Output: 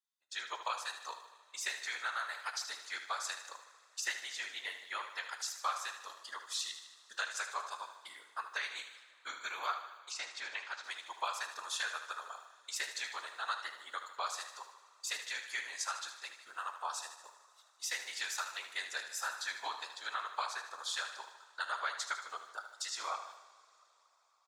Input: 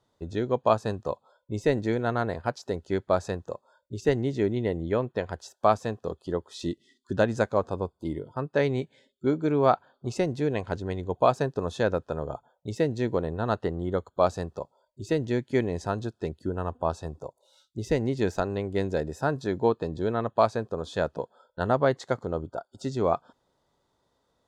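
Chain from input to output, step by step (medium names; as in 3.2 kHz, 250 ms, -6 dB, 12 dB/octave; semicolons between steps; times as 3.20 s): high-pass 1.2 kHz 24 dB/octave; gate -59 dBFS, range -24 dB; treble shelf 4.9 kHz +12 dB; compression 5:1, threshold -35 dBFS, peak gain reduction 10.5 dB; two-slope reverb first 0.55 s, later 4.4 s, from -19 dB, DRR 8.5 dB; whisper effect; 10.11–10.84 s: distance through air 100 m; feedback delay 76 ms, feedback 57%, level -10.5 dB; trim +1 dB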